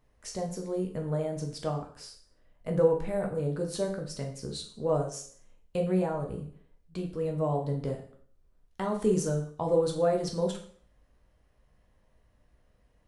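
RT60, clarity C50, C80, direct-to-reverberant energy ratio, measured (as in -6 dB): 0.55 s, 8.5 dB, 12.5 dB, 1.5 dB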